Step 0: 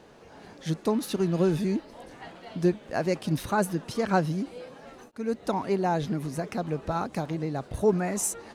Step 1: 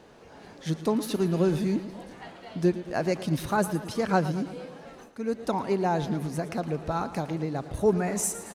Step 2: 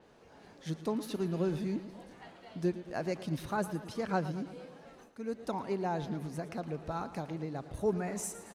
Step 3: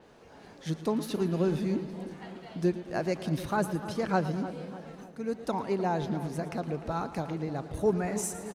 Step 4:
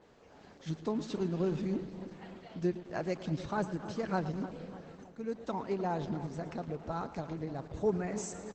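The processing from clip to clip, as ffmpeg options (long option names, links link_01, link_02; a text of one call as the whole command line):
ffmpeg -i in.wav -af "aecho=1:1:113|226|339|452|565|678:0.2|0.114|0.0648|0.037|0.0211|0.012" out.wav
ffmpeg -i in.wav -af "adynamicequalizer=threshold=0.00316:dfrequency=5700:dqfactor=0.7:tfrequency=5700:tqfactor=0.7:attack=5:release=100:ratio=0.375:range=2.5:mode=cutabove:tftype=highshelf,volume=-8dB" out.wav
ffmpeg -i in.wav -filter_complex "[0:a]asplit=2[link_01][link_02];[link_02]adelay=301,lowpass=frequency=1600:poles=1,volume=-12.5dB,asplit=2[link_03][link_04];[link_04]adelay=301,lowpass=frequency=1600:poles=1,volume=0.53,asplit=2[link_05][link_06];[link_06]adelay=301,lowpass=frequency=1600:poles=1,volume=0.53,asplit=2[link_07][link_08];[link_08]adelay=301,lowpass=frequency=1600:poles=1,volume=0.53,asplit=2[link_09][link_10];[link_10]adelay=301,lowpass=frequency=1600:poles=1,volume=0.53[link_11];[link_01][link_03][link_05][link_07][link_09][link_11]amix=inputs=6:normalize=0,volume=4.5dB" out.wav
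ffmpeg -i in.wav -af "volume=-4dB" -ar 48000 -c:a libopus -b:a 12k out.opus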